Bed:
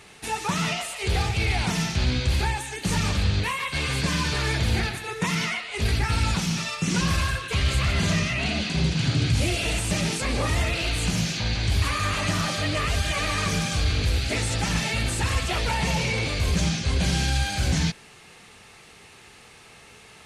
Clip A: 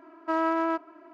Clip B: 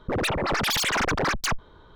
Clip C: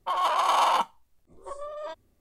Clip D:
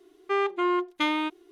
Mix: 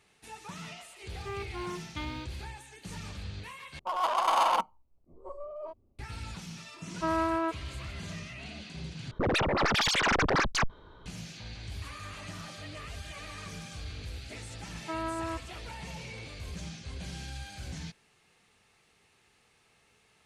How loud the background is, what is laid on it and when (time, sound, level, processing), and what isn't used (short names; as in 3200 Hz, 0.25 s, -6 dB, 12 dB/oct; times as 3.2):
bed -17.5 dB
0.96 add D -14.5 dB + G.711 law mismatch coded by mu
3.79 replace with C -1.5 dB + Wiener smoothing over 25 samples
6.74 add A -3 dB
9.11 replace with B -1.5 dB + LPF 6400 Hz
14.6 add A -9 dB